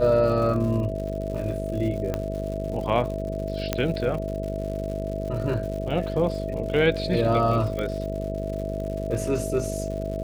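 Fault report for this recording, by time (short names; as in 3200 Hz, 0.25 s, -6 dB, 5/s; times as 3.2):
buzz 50 Hz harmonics 12 -31 dBFS
crackle 160/s -34 dBFS
tone 650 Hz -31 dBFS
2.14 pop -14 dBFS
3.73 pop -8 dBFS
7.79 pop -17 dBFS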